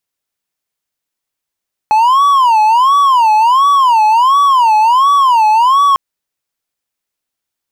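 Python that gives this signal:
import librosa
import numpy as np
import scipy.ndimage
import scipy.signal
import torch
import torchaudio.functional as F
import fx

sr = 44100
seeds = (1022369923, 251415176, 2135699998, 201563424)

y = fx.siren(sr, length_s=4.05, kind='wail', low_hz=854.0, high_hz=1140.0, per_s=1.4, wave='triangle', level_db=-4.0)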